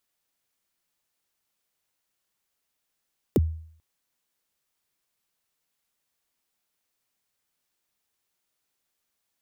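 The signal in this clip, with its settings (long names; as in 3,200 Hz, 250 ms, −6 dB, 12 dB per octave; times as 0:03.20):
synth kick length 0.44 s, from 500 Hz, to 80 Hz, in 31 ms, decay 0.58 s, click on, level −14 dB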